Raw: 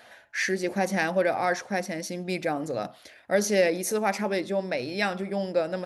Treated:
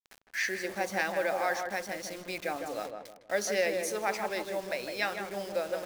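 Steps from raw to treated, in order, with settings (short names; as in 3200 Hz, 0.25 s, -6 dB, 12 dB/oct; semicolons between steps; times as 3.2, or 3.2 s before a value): weighting filter A; bit-crush 7-bit; on a send: darkening echo 0.157 s, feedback 37%, low-pass 1200 Hz, level -4 dB; on the sum: gain -4.5 dB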